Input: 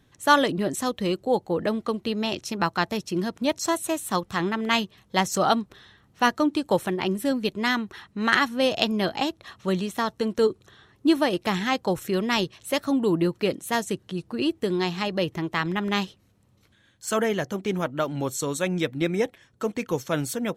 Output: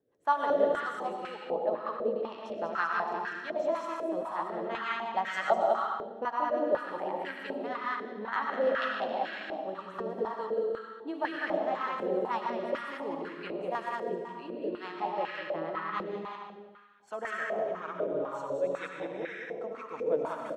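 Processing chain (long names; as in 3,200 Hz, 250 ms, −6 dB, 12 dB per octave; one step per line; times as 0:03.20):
delay that plays each chunk backwards 107 ms, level −4 dB
rotating-speaker cabinet horn 6.3 Hz
on a send: loudspeakers that aren't time-aligned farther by 68 metres −2 dB, 93 metres −9 dB
on the sum: comb and all-pass reverb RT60 1.4 s, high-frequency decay 0.85×, pre-delay 65 ms, DRR 2 dB
band-pass on a step sequencer 4 Hz 490–1,600 Hz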